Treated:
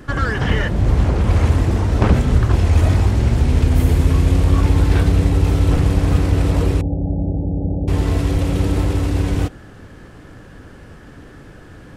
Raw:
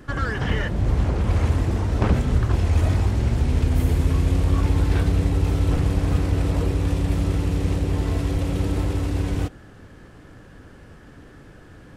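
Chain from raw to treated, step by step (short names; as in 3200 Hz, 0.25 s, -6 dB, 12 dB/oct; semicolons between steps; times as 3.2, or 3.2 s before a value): 6.81–7.88 rippled Chebyshev low-pass 850 Hz, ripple 6 dB; gain +5.5 dB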